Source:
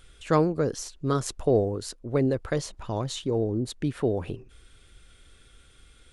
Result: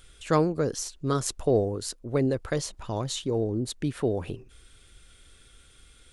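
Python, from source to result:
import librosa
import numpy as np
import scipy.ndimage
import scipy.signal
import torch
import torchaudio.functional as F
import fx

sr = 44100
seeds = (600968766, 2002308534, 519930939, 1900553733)

y = fx.high_shelf(x, sr, hz=4200.0, db=6.0)
y = y * librosa.db_to_amplitude(-1.0)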